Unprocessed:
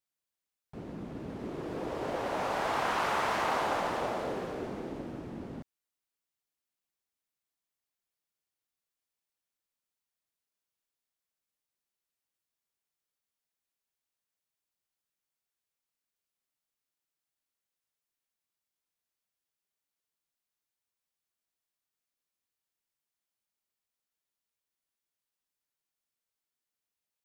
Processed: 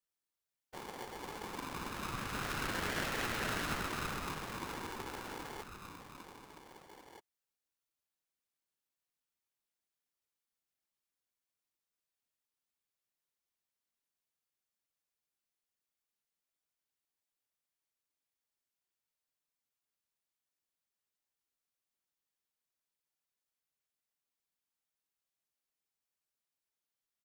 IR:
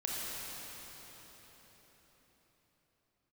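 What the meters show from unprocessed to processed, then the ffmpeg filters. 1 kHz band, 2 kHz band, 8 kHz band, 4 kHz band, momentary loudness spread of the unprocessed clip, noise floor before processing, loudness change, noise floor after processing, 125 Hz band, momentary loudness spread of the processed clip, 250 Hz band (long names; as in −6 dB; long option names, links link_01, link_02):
−8.5 dB, −2.0 dB, +3.0 dB, −0.5 dB, 14 LU, below −85 dBFS, −6.0 dB, below −85 dBFS, −1.5 dB, 19 LU, −5.5 dB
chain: -filter_complex "[0:a]asplit=2[link_01][link_02];[link_02]adelay=1574,volume=-12dB,highshelf=frequency=4000:gain=-35.4[link_03];[link_01][link_03]amix=inputs=2:normalize=0,afftfilt=real='hypot(re,im)*cos(2*PI*random(0))':imag='hypot(re,im)*sin(2*PI*random(1))':win_size=512:overlap=0.75,asplit=2[link_04][link_05];[link_05]acompressor=threshold=-49dB:ratio=6,volume=-1.5dB[link_06];[link_04][link_06]amix=inputs=2:normalize=0,aeval=exprs='val(0)*sgn(sin(2*PI*640*n/s))':channel_layout=same,volume=-2dB"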